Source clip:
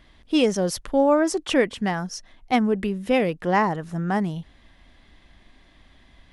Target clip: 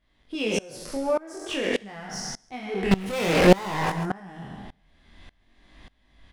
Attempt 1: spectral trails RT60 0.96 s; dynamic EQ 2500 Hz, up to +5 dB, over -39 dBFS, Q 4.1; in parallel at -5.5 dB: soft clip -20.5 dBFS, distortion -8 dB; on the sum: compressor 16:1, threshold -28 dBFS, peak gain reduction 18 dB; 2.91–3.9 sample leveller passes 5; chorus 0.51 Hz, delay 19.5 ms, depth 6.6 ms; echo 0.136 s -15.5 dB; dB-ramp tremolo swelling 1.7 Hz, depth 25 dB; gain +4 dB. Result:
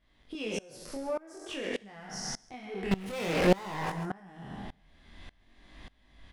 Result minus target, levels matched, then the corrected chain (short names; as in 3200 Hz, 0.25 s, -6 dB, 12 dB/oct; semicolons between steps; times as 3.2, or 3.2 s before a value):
compressor: peak gain reduction +10 dB; soft clip: distortion -5 dB
spectral trails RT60 0.96 s; dynamic EQ 2500 Hz, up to +5 dB, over -39 dBFS, Q 4.1; in parallel at -5.5 dB: soft clip -31 dBFS, distortion -3 dB; on the sum: compressor 16:1, threshold -18 dBFS, peak gain reduction 8 dB; 2.91–3.9 sample leveller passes 5; chorus 0.51 Hz, delay 19.5 ms, depth 6.6 ms; echo 0.136 s -15.5 dB; dB-ramp tremolo swelling 1.7 Hz, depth 25 dB; gain +4 dB